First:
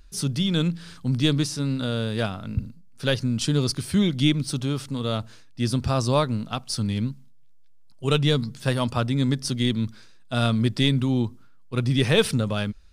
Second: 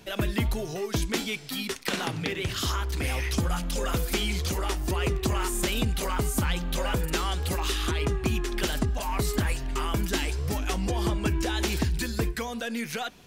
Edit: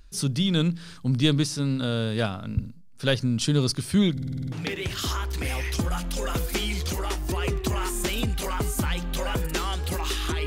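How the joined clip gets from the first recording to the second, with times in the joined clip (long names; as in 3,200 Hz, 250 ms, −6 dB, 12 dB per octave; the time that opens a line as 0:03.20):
first
0:04.12: stutter in place 0.05 s, 8 plays
0:04.52: continue with second from 0:02.11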